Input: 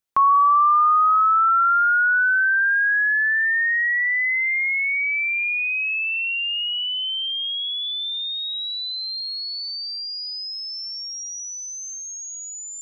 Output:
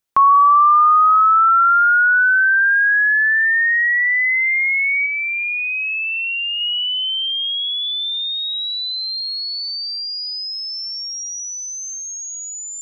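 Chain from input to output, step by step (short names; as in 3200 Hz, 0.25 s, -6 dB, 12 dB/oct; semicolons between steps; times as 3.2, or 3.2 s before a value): 5.06–6.61 graphic EQ 250/500/2000 Hz +12/-10/-4 dB; gain +4.5 dB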